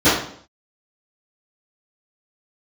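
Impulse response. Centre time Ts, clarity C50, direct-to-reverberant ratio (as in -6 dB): 50 ms, 2.5 dB, -20.0 dB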